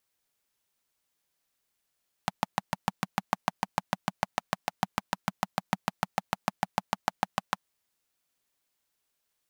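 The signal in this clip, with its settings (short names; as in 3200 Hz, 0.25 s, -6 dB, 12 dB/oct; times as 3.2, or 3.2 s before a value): single-cylinder engine model, steady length 5.36 s, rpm 800, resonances 190/790 Hz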